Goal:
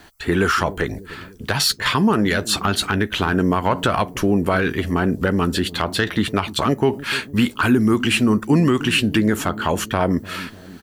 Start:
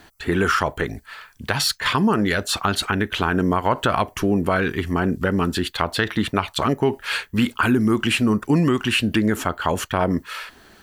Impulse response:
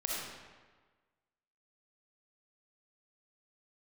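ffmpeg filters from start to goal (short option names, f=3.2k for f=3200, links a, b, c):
-filter_complex "[0:a]acrossover=split=520|3100[a][b][c];[a]aecho=1:1:298|596|894|1192|1490:0.188|0.104|0.057|0.0313|0.0172[d];[b]asoftclip=type=tanh:threshold=-13.5dB[e];[c]asplit=2[f][g];[g]adelay=13,volume=-6dB[h];[f][h]amix=inputs=2:normalize=0[i];[d][e][i]amix=inputs=3:normalize=0,volume=2dB"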